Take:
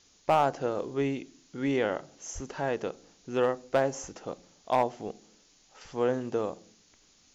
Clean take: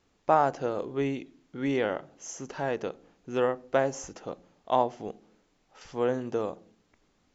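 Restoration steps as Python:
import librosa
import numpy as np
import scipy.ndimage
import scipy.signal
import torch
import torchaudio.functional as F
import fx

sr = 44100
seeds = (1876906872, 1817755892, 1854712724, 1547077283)

y = fx.fix_declip(x, sr, threshold_db=-15.5)
y = fx.fix_deplosive(y, sr, at_s=(2.34,))
y = fx.noise_reduce(y, sr, print_start_s=6.77, print_end_s=7.27, reduce_db=7.0)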